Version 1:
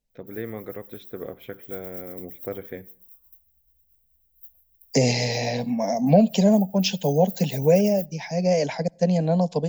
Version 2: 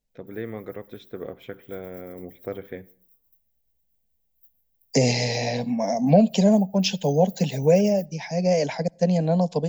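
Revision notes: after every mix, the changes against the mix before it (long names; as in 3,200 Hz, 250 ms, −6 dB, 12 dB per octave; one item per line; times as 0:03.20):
background −10.5 dB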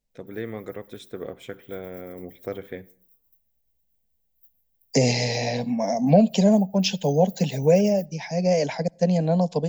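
first voice: remove high-frequency loss of the air 170 metres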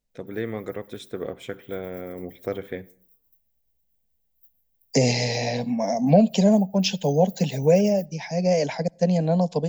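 first voice +3.0 dB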